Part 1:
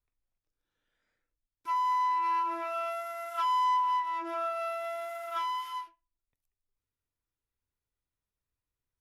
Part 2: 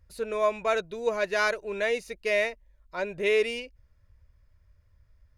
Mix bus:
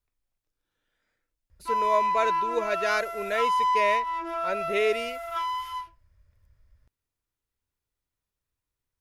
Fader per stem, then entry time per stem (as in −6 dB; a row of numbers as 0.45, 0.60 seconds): +3.0, −1.0 decibels; 0.00, 1.50 seconds